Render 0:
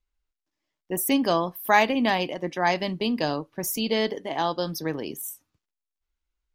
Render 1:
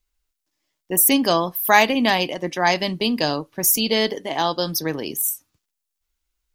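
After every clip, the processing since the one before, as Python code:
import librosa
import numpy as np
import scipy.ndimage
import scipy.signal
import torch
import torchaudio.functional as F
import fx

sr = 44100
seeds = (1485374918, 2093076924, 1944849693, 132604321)

y = fx.high_shelf(x, sr, hz=3900.0, db=10.0)
y = y * 10.0 ** (3.5 / 20.0)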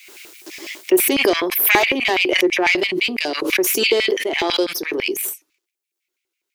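y = fx.diode_clip(x, sr, knee_db=-15.5)
y = fx.filter_lfo_highpass(y, sr, shape='square', hz=6.0, low_hz=370.0, high_hz=2300.0, q=7.3)
y = fx.pre_swell(y, sr, db_per_s=39.0)
y = y * 10.0 ** (-1.5 / 20.0)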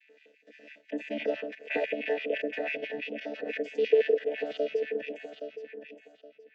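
y = fx.chord_vocoder(x, sr, chord='bare fifth', root=50)
y = fx.vowel_filter(y, sr, vowel='e')
y = fx.echo_feedback(y, sr, ms=820, feedback_pct=24, wet_db=-8.5)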